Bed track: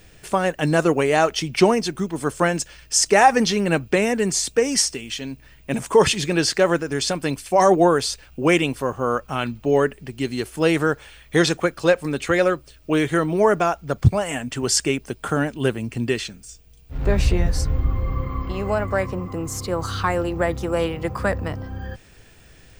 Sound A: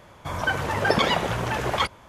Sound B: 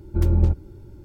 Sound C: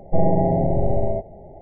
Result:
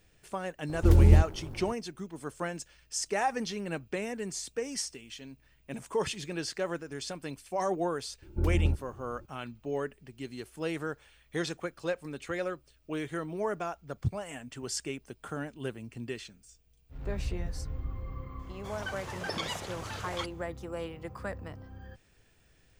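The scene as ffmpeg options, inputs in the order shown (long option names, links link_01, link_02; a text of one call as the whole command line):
ffmpeg -i bed.wav -i cue0.wav -i cue1.wav -filter_complex "[2:a]asplit=2[link_01][link_02];[0:a]volume=-15.5dB[link_03];[link_01]acrusher=bits=6:mix=0:aa=0.5[link_04];[1:a]equalizer=frequency=6700:width=0.48:gain=9.5[link_05];[link_04]atrim=end=1.04,asetpts=PTS-STARTPTS,volume=-0.5dB,afade=type=in:duration=0.004:curve=hsin,afade=type=out:start_time=1.036:duration=0.004:curve=hsin,adelay=690[link_06];[link_02]atrim=end=1.04,asetpts=PTS-STARTPTS,volume=-8.5dB,afade=type=in:duration=0.004:curve=hsin,afade=type=out:start_time=1.036:duration=0.004:curve=hsin,adelay=8220[link_07];[link_05]atrim=end=2.08,asetpts=PTS-STARTPTS,volume=-16.5dB,afade=type=in:duration=0.004:curve=hsin,afade=type=out:start_time=2.076:duration=0.004:curve=hsin,adelay=18390[link_08];[link_03][link_06][link_07][link_08]amix=inputs=4:normalize=0" out.wav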